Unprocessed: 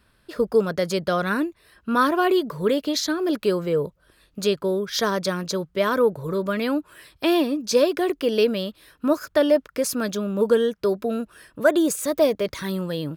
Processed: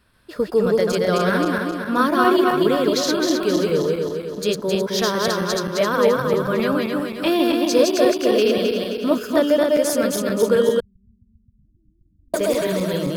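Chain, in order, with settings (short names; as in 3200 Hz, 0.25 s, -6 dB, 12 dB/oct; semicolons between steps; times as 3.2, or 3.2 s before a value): regenerating reverse delay 0.132 s, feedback 71%, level -1 dB; 10.8–12.34 inverse Chebyshev low-pass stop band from 500 Hz, stop band 80 dB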